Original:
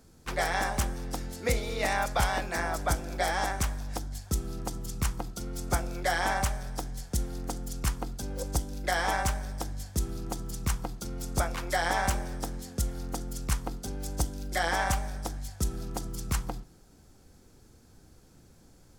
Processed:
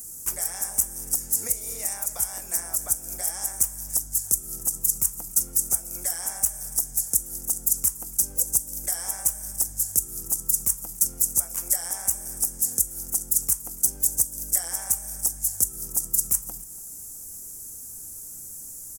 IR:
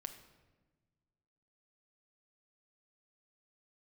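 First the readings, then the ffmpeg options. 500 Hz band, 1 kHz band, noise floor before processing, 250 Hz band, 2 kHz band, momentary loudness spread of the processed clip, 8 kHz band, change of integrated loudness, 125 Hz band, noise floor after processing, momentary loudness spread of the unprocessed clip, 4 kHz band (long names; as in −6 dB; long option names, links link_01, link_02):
−12.0 dB, −13.5 dB, −57 dBFS, −9.5 dB, −13.5 dB, 15 LU, +16.0 dB, +8.5 dB, −11.5 dB, −40 dBFS, 10 LU, −2.5 dB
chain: -filter_complex "[0:a]acompressor=threshold=-40dB:ratio=6,aexciter=amount=15.1:drive=9.7:freq=6400,asplit=2[link_01][link_02];[link_02]aecho=0:1:286:0.0944[link_03];[link_01][link_03]amix=inputs=2:normalize=0"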